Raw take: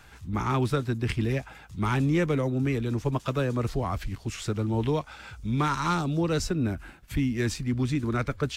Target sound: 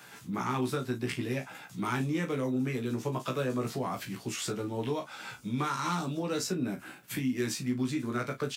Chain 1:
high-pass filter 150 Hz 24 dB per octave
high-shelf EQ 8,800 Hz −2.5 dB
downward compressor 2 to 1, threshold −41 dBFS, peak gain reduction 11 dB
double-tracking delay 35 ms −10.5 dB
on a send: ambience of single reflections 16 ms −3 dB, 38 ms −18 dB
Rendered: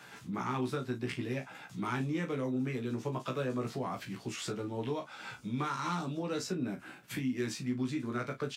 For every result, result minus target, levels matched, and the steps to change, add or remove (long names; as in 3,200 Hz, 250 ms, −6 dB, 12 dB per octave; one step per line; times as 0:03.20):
8,000 Hz band −3.5 dB; downward compressor: peak gain reduction +3 dB
change: high-shelf EQ 8,800 Hz +9.5 dB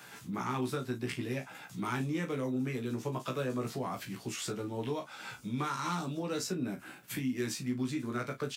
downward compressor: peak gain reduction +3 dB
change: downward compressor 2 to 1, threshold −35 dBFS, peak gain reduction 8 dB